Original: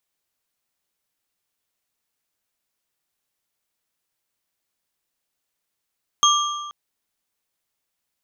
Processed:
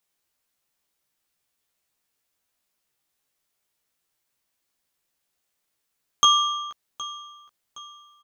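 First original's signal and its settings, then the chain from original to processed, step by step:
struck metal bar, length 0.48 s, lowest mode 1,180 Hz, modes 3, decay 1.46 s, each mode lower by 1.5 dB, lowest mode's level −14 dB
double-tracking delay 15 ms −3 dB
repeating echo 767 ms, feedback 40%, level −17 dB

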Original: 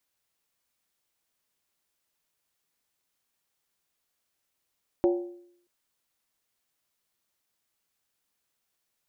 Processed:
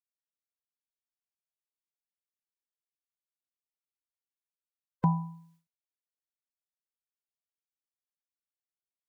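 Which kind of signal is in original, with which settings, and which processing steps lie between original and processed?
struck skin, lowest mode 351 Hz, decay 0.68 s, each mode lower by 7.5 dB, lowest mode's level −17.5 dB
frequency inversion band by band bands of 500 Hz
downward expander −59 dBFS

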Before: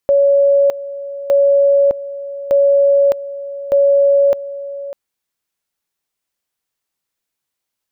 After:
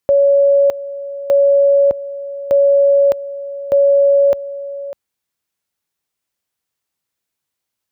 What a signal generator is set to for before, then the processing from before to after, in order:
tone at two levels in turn 561 Hz −8 dBFS, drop 15.5 dB, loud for 0.61 s, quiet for 0.60 s, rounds 4
high-pass filter 62 Hz
low-shelf EQ 120 Hz +7 dB

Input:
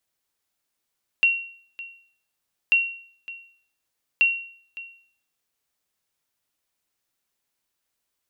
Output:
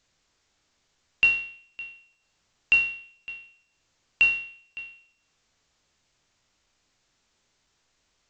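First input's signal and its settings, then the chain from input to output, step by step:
ping with an echo 2,740 Hz, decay 0.54 s, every 1.49 s, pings 3, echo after 0.56 s, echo −18.5 dB −11.5 dBFS
peak hold with a decay on every bin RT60 0.55 s
low-shelf EQ 140 Hz +11.5 dB
A-law companding 128 kbit/s 16,000 Hz

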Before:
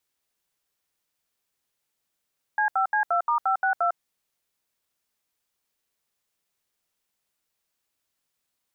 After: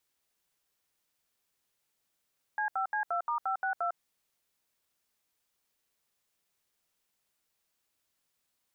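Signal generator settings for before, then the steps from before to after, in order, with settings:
touch tones "C5C2*562", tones 102 ms, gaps 73 ms, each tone −22.5 dBFS
brickwall limiter −25 dBFS

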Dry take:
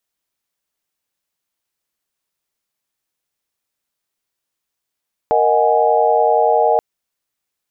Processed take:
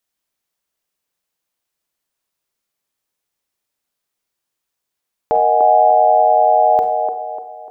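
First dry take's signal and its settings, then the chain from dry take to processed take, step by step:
held notes A#4/D#5/F#5/G#5 sine, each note −16.5 dBFS 1.48 s
delay with a band-pass on its return 297 ms, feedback 39%, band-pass 590 Hz, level −4 dB
four-comb reverb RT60 0.51 s, combs from 31 ms, DRR 8.5 dB

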